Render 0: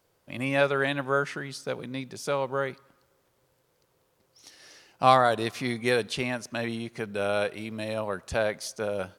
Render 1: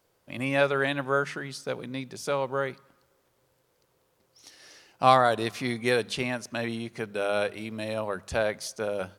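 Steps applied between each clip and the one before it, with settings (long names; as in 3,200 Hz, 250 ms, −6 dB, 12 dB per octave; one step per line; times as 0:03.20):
mains-hum notches 50/100/150/200 Hz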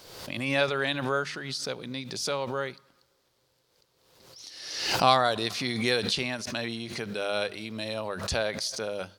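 parametric band 4,400 Hz +11 dB 1.1 octaves
background raised ahead of every attack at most 51 dB per second
level −3.5 dB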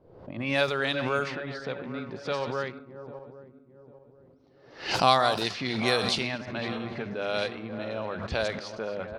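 feedback delay that plays each chunk backwards 399 ms, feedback 62%, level −10.5 dB
low-pass that shuts in the quiet parts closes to 420 Hz, open at −21.5 dBFS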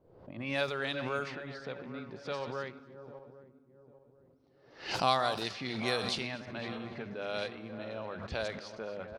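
repeating echo 246 ms, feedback 43%, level −24 dB
level −7 dB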